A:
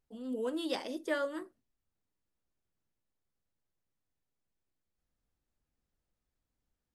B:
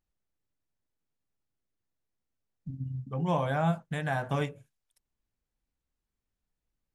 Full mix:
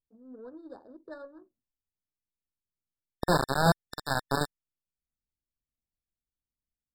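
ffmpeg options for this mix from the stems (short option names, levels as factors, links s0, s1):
-filter_complex "[0:a]volume=0.316[s0];[1:a]acrusher=bits=3:mix=0:aa=0.000001,volume=1.41[s1];[s0][s1]amix=inputs=2:normalize=0,adynamicsmooth=sensitivity=8:basefreq=520,afftfilt=real='re*eq(mod(floor(b*sr/1024/1800),2),0)':imag='im*eq(mod(floor(b*sr/1024/1800),2),0)':win_size=1024:overlap=0.75"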